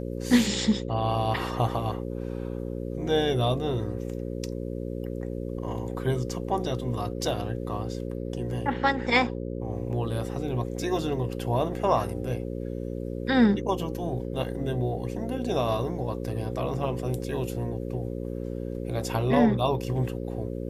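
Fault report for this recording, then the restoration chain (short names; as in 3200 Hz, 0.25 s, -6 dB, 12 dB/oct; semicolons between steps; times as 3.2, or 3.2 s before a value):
buzz 60 Hz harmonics 9 -33 dBFS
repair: de-hum 60 Hz, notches 9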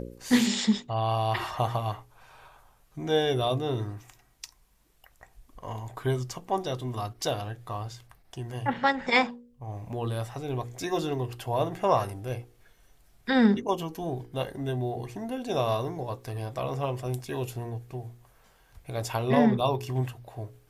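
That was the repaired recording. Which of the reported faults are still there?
none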